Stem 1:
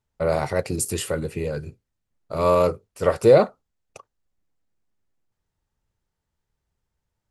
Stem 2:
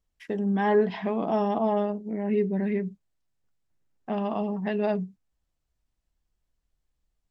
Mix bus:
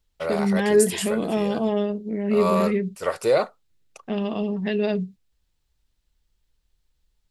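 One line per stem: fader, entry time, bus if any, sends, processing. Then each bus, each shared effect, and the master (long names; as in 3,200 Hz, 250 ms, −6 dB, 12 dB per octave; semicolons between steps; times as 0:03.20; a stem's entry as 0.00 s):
+0.5 dB, 0.00 s, no send, high-pass filter 1,000 Hz 6 dB per octave
+2.0 dB, 0.00 s, no send, drawn EQ curve 290 Hz 0 dB, 460 Hz +3 dB, 810 Hz −8 dB, 3,900 Hz +10 dB, 5,900 Hz +4 dB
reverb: not used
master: low-shelf EQ 120 Hz +6 dB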